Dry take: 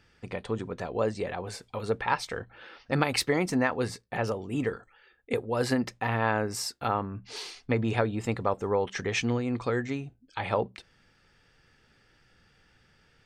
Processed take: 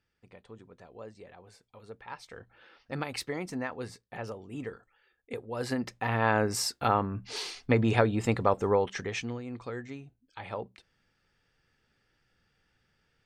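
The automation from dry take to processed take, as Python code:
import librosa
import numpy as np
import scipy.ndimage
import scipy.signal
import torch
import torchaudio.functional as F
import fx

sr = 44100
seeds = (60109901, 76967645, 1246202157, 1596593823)

y = fx.gain(x, sr, db=fx.line((2.01, -17.5), (2.51, -9.0), (5.36, -9.0), (6.43, 2.5), (8.7, 2.5), (9.36, -9.5)))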